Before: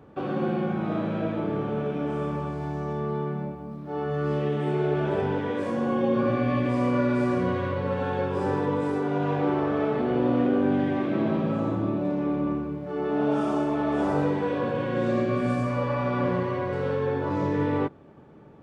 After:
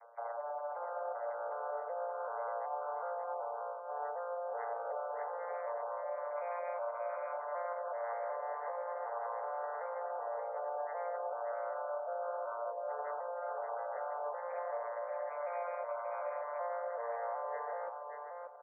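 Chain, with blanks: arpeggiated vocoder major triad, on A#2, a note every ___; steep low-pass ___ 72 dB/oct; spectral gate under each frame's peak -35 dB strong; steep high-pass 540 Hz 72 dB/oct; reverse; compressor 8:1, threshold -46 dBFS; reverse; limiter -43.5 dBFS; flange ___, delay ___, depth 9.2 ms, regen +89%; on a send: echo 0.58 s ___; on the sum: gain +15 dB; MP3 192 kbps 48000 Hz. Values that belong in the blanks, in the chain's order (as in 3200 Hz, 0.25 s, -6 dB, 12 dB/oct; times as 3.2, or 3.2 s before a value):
0.377 s, 2500 Hz, 0.39 Hz, 5.6 ms, -5 dB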